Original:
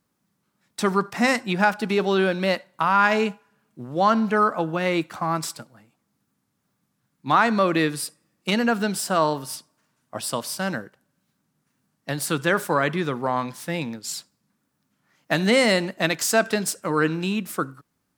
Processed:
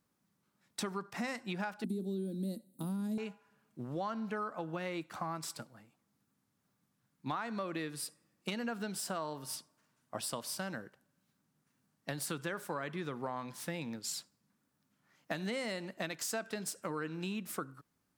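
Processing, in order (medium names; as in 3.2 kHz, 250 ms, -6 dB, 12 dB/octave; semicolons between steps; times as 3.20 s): 1.84–3.18 s: FFT filter 150 Hz 0 dB, 230 Hz +14 dB, 1.1 kHz -27 dB, 2.6 kHz -26 dB, 3.9 kHz -5 dB, 5.6 kHz -15 dB, 9 kHz +12 dB; compression 6:1, threshold -30 dBFS, peak gain reduction 16 dB; trim -5.5 dB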